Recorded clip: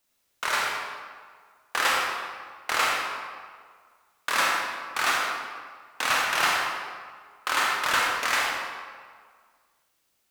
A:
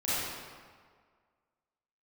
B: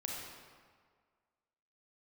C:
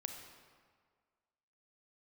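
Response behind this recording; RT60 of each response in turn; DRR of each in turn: B; 1.8, 1.8, 1.8 seconds; −12.5, −2.5, 4.0 decibels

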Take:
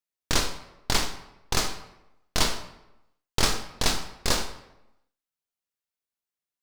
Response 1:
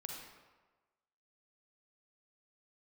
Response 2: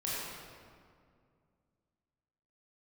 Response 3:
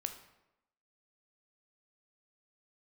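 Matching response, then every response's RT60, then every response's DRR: 3; 1.3, 2.2, 0.90 seconds; 0.0, −8.0, 6.5 decibels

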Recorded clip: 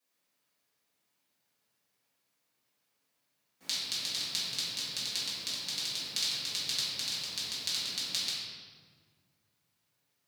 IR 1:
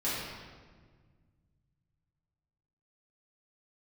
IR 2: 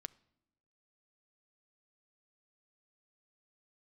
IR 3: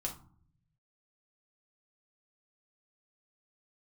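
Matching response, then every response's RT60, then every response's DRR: 1; 1.6 s, non-exponential decay, 0.50 s; −11.0, 16.0, −0.5 decibels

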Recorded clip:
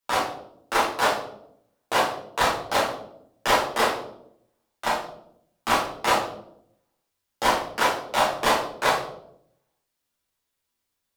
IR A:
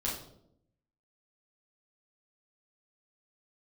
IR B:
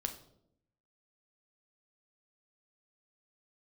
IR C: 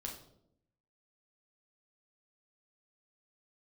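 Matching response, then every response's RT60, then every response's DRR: A; 0.75, 0.75, 0.75 seconds; −7.5, 5.0, −1.0 decibels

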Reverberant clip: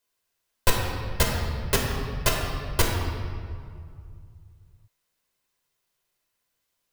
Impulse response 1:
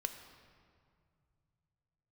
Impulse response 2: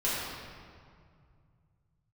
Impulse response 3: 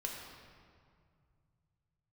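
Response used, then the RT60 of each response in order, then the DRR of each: 3; 2.3, 2.2, 2.2 seconds; 7.0, −10.0, −1.0 decibels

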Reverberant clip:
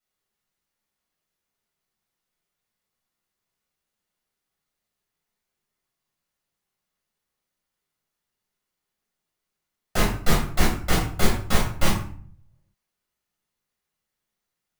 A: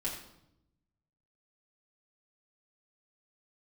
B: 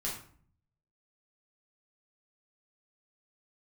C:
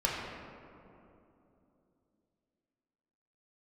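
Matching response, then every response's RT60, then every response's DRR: B; 0.80, 0.50, 3.0 seconds; −6.5, −5.0, −5.0 decibels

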